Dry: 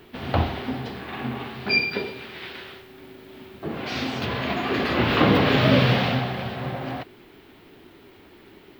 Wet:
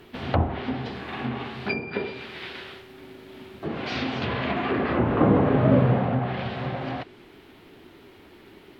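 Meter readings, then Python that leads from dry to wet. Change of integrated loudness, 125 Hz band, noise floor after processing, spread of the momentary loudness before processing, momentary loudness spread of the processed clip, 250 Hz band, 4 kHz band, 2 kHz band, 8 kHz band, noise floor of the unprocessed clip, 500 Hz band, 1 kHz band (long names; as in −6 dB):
−2.0 dB, 0.0 dB, −51 dBFS, 18 LU, 22 LU, 0.0 dB, −9.0 dB, −6.5 dB, can't be measured, −51 dBFS, 0.0 dB, −1.5 dB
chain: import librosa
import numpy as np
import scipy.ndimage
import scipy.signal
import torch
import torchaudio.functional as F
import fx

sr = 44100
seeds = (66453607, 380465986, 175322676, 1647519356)

y = fx.env_lowpass_down(x, sr, base_hz=1000.0, full_db=-18.5)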